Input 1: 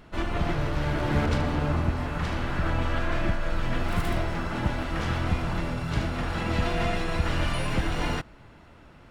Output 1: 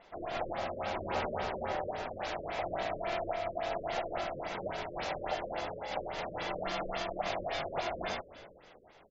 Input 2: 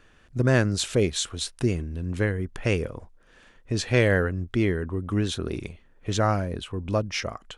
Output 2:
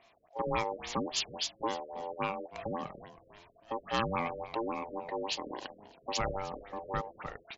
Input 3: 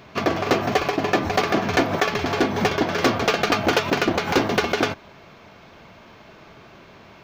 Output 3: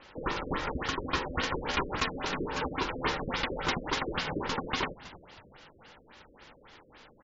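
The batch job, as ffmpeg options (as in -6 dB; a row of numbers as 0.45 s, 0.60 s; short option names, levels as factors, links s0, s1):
-filter_complex "[0:a]highshelf=f=2200:g=12,aeval=exprs='val(0)*sin(2*PI*680*n/s)':c=same,asoftclip=type=tanh:threshold=0.224,asplit=2[s0][s1];[s1]asplit=3[s2][s3][s4];[s2]adelay=321,afreqshift=-82,volume=0.133[s5];[s3]adelay=642,afreqshift=-164,volume=0.0562[s6];[s4]adelay=963,afreqshift=-246,volume=0.0234[s7];[s5][s6][s7]amix=inputs=3:normalize=0[s8];[s0][s8]amix=inputs=2:normalize=0,afftfilt=real='re*lt(b*sr/1024,570*pow(7600/570,0.5+0.5*sin(2*PI*3.6*pts/sr)))':imag='im*lt(b*sr/1024,570*pow(7600/570,0.5+0.5*sin(2*PI*3.6*pts/sr)))':win_size=1024:overlap=0.75,volume=0.447"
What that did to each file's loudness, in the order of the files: -8.0 LU, -10.0 LU, -11.0 LU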